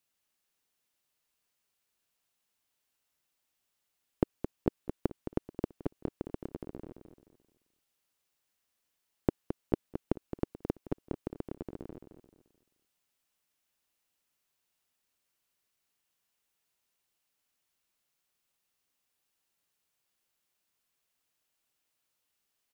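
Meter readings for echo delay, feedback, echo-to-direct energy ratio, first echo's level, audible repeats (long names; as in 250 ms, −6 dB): 217 ms, 33%, −8.5 dB, −9.0 dB, 3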